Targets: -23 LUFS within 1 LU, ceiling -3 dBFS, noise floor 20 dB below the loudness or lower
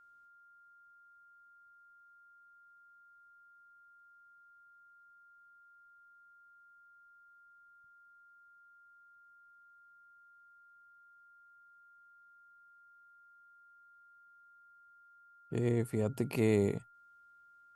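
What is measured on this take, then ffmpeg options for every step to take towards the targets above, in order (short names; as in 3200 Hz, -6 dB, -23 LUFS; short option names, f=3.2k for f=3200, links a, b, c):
steady tone 1400 Hz; tone level -59 dBFS; loudness -33.0 LUFS; peak -17.0 dBFS; loudness target -23.0 LUFS
-> -af "bandreject=f=1.4k:w=30"
-af "volume=10dB"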